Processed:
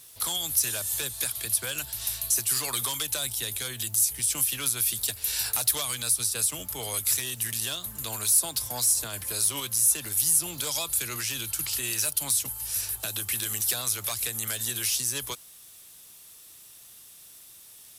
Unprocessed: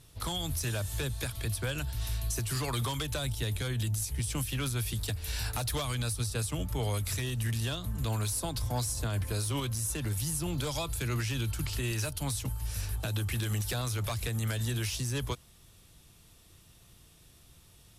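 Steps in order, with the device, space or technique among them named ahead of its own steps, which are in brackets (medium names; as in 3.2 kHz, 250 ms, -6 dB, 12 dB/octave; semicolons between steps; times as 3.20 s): turntable without a phono preamp (RIAA curve recording; white noise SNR 32 dB)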